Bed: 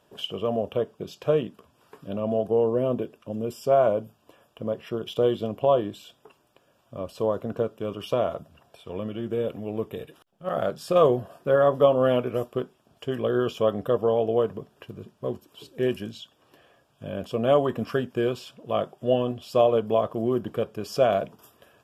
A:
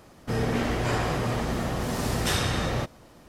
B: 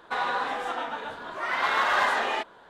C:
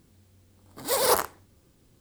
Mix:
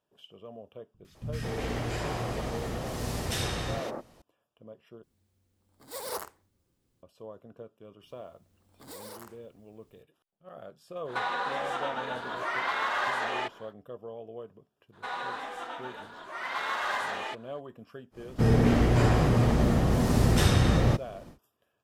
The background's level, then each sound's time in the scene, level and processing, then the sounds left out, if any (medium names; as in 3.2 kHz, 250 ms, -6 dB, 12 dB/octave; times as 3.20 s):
bed -19.5 dB
0.94 s: add A -5 dB + three bands offset in time lows, highs, mids 110/210 ms, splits 210/1400 Hz
5.03 s: replace with C -14 dB
8.03 s: add C -9.5 dB + compression 16:1, threshold -31 dBFS
11.05 s: add B -5 dB, fades 0.10 s + three bands compressed up and down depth 70%
14.92 s: add B -8 dB, fades 0.02 s + treble shelf 5.9 kHz +6.5 dB
18.11 s: add A -2.5 dB, fades 0.10 s + bass shelf 450 Hz +9.5 dB